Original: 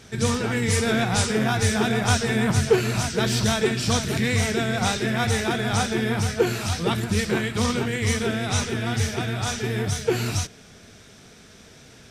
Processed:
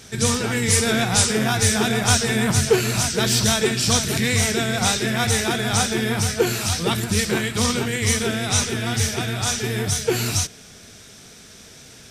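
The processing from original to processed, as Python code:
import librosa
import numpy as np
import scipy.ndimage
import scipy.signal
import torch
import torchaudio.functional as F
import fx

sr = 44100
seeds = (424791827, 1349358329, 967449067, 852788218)

y = fx.high_shelf(x, sr, hz=4200.0, db=10.0)
y = y * librosa.db_to_amplitude(1.0)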